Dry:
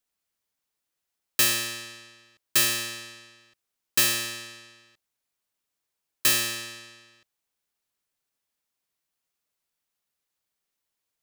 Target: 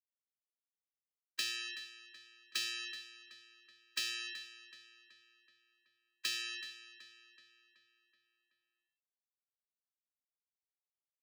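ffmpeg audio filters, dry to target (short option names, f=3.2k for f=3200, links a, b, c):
-filter_complex "[0:a]acompressor=threshold=-33dB:ratio=2,afftfilt=real='re*gte(hypot(re,im),0.0316)':imag='im*gte(hypot(re,im),0.0316)':win_size=1024:overlap=0.75,acrossover=split=190 5300:gain=0.0794 1 0.0794[a][b][c];[a][b][c]amix=inputs=3:normalize=0,acrossover=split=360|3000[d][e][f];[e]acompressor=threshold=-53dB:ratio=4[g];[d][g][f]amix=inputs=3:normalize=0,lowshelf=f=710:t=q:w=1.5:g=-8.5,asplit=2[h][i];[i]adelay=377,lowpass=f=5k:p=1,volume=-12.5dB,asplit=2[j][k];[k]adelay=377,lowpass=f=5k:p=1,volume=0.54,asplit=2[l][m];[m]adelay=377,lowpass=f=5k:p=1,volume=0.54,asplit=2[n][o];[o]adelay=377,lowpass=f=5k:p=1,volume=0.54,asplit=2[p][q];[q]adelay=377,lowpass=f=5k:p=1,volume=0.54,asplit=2[r][s];[s]adelay=377,lowpass=f=5k:p=1,volume=0.54[t];[j][l][n][p][r][t]amix=inputs=6:normalize=0[u];[h][u]amix=inputs=2:normalize=0,volume=2.5dB"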